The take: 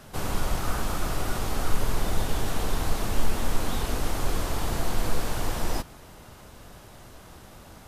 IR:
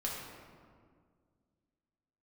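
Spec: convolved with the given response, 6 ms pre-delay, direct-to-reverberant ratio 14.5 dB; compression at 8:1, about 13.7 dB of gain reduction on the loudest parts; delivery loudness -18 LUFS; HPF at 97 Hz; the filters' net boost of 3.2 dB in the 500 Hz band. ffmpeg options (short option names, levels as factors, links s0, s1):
-filter_complex "[0:a]highpass=97,equalizer=f=500:t=o:g=4,acompressor=threshold=0.00794:ratio=8,asplit=2[s0][s1];[1:a]atrim=start_sample=2205,adelay=6[s2];[s1][s2]afir=irnorm=-1:irlink=0,volume=0.133[s3];[s0][s3]amix=inputs=2:normalize=0,volume=22.4"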